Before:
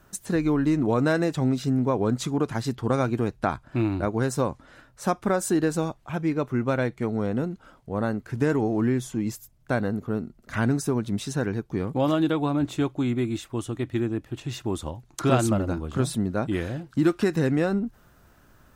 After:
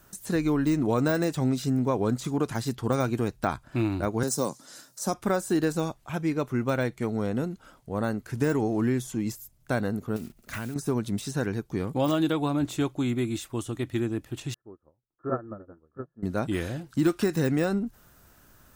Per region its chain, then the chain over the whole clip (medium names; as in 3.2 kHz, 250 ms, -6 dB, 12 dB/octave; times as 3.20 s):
4.23–5.14 s: high-pass 150 Hz 24 dB/octave + resonant high shelf 3.8 kHz +12.5 dB, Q 1.5
10.16–10.76 s: block-companded coder 5-bit + peaking EQ 2.5 kHz +5.5 dB 0.36 oct + compression 10:1, threshold -28 dBFS
14.54–16.23 s: rippled Chebyshev low-pass 1.8 kHz, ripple 9 dB + upward expansion 2.5:1, over -39 dBFS
whole clip: de-esser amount 95%; treble shelf 4.8 kHz +11 dB; trim -2 dB